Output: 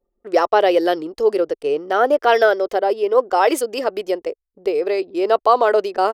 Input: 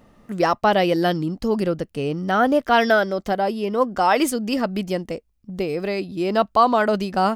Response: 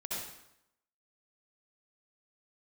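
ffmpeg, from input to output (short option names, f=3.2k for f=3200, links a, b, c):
-af "atempo=1.2,anlmdn=0.398,lowshelf=f=280:t=q:w=3:g=-13.5"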